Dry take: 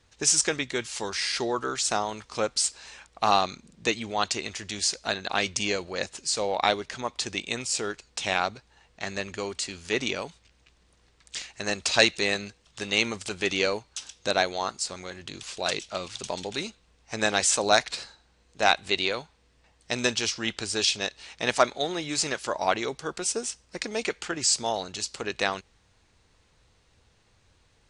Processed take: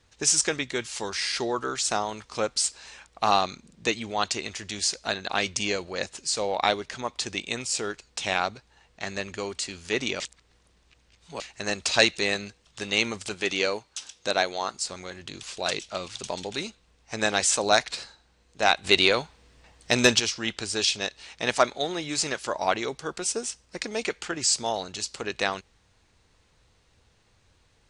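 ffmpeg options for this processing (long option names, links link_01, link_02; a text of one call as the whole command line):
ffmpeg -i in.wav -filter_complex "[0:a]asettb=1/sr,asplit=3[link_01][link_02][link_03];[link_01]atrim=end=13.344[link_04];[link_02]atrim=start=13.34:end=14.74,asetpts=PTS-STARTPTS,afade=type=in:duration=0.004:curve=qsin,afade=type=out:start_time=1.396:duration=0.004:curve=qsin,lowshelf=frequency=130:gain=-9.5[link_05];[link_03]atrim=start=14.736[link_06];[link_04][link_05]acrossfade=duration=0.004:curve1=hsin:curve2=qsin[link_07];[link_07][link_06]acrossfade=duration=0.004:curve1=qsin:curve2=hsin,asettb=1/sr,asplit=3[link_08][link_09][link_10];[link_08]atrim=end=18.844[link_11];[link_09]atrim=start=18.84:end=20.2,asetpts=PTS-STARTPTS,afade=type=in:duration=0.004:curve=qsin,afade=type=out:start_time=1.356:duration=0.004:curve=qsin,acontrast=88[link_12];[link_10]atrim=start=20.196[link_13];[link_11][link_12]acrossfade=duration=0.004:curve1=hsin:curve2=qsin[link_14];[link_14][link_13]acrossfade=duration=0.004:curve1=qsin:curve2=hsin,asplit=3[link_15][link_16][link_17];[link_15]atrim=end=10.202[link_18];[link_16]atrim=start=10.198:end=11.402,asetpts=PTS-STARTPTS,areverse[link_19];[link_17]atrim=start=11.398[link_20];[link_18][link_19]acrossfade=duration=0.004:curve1=hsin:curve2=hsin[link_21];[link_21][link_20]acrossfade=duration=0.004:curve1=hsin:curve2=hsin" out.wav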